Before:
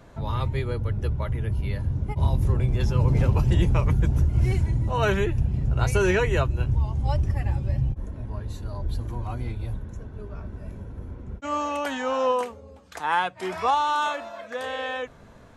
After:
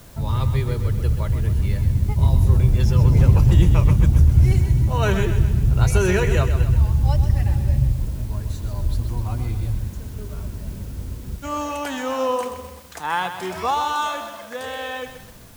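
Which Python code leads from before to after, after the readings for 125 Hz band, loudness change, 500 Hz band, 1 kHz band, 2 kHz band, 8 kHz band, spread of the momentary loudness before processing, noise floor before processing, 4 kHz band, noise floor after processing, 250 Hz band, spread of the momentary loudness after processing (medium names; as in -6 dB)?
+6.5 dB, +5.5 dB, +1.0 dB, +0.5 dB, +1.0 dB, +7.0 dB, 15 LU, -48 dBFS, +3.0 dB, -40 dBFS, +4.5 dB, 17 LU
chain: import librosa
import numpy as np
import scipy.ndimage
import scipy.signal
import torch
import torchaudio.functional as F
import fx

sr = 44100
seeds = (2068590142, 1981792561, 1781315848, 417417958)

y = fx.bass_treble(x, sr, bass_db=6, treble_db=6)
y = fx.dmg_noise_colour(y, sr, seeds[0], colour='white', level_db=-51.0)
y = fx.echo_crushed(y, sr, ms=129, feedback_pct=55, bits=7, wet_db=-9)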